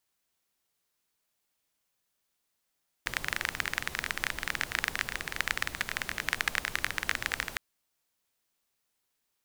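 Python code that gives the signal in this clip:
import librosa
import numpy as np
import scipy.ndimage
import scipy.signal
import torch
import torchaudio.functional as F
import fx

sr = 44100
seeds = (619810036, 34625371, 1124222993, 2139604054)

y = fx.rain(sr, seeds[0], length_s=4.51, drops_per_s=21.0, hz=1800.0, bed_db=-9)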